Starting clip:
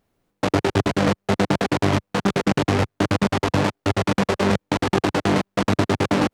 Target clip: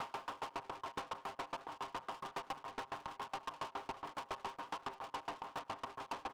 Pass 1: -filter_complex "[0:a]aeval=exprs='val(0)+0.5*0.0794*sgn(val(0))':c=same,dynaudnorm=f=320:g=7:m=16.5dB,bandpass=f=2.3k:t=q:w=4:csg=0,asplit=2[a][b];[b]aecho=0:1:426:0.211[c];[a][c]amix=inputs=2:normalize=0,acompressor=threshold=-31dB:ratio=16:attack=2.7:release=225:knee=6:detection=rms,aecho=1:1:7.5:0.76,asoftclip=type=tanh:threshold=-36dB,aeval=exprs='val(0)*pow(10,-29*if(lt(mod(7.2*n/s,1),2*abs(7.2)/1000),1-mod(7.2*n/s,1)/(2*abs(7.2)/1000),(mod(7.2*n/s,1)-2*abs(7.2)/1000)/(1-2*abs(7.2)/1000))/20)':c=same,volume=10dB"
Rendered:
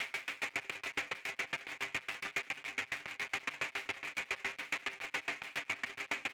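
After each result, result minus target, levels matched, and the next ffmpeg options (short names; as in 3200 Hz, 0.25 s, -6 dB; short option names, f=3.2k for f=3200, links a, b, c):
1000 Hz band -11.5 dB; soft clip: distortion -5 dB
-filter_complex "[0:a]aeval=exprs='val(0)+0.5*0.0794*sgn(val(0))':c=same,dynaudnorm=f=320:g=7:m=16.5dB,bandpass=f=1k:t=q:w=4:csg=0,asplit=2[a][b];[b]aecho=0:1:426:0.211[c];[a][c]amix=inputs=2:normalize=0,acompressor=threshold=-31dB:ratio=16:attack=2.7:release=225:knee=6:detection=rms,aecho=1:1:7.5:0.76,asoftclip=type=tanh:threshold=-36dB,aeval=exprs='val(0)*pow(10,-29*if(lt(mod(7.2*n/s,1),2*abs(7.2)/1000),1-mod(7.2*n/s,1)/(2*abs(7.2)/1000),(mod(7.2*n/s,1)-2*abs(7.2)/1000)/(1-2*abs(7.2)/1000))/20)':c=same,volume=10dB"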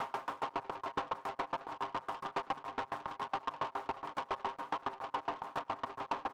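soft clip: distortion -6 dB
-filter_complex "[0:a]aeval=exprs='val(0)+0.5*0.0794*sgn(val(0))':c=same,dynaudnorm=f=320:g=7:m=16.5dB,bandpass=f=1k:t=q:w=4:csg=0,asplit=2[a][b];[b]aecho=0:1:426:0.211[c];[a][c]amix=inputs=2:normalize=0,acompressor=threshold=-31dB:ratio=16:attack=2.7:release=225:knee=6:detection=rms,aecho=1:1:7.5:0.76,asoftclip=type=tanh:threshold=-45dB,aeval=exprs='val(0)*pow(10,-29*if(lt(mod(7.2*n/s,1),2*abs(7.2)/1000),1-mod(7.2*n/s,1)/(2*abs(7.2)/1000),(mod(7.2*n/s,1)-2*abs(7.2)/1000)/(1-2*abs(7.2)/1000))/20)':c=same,volume=10dB"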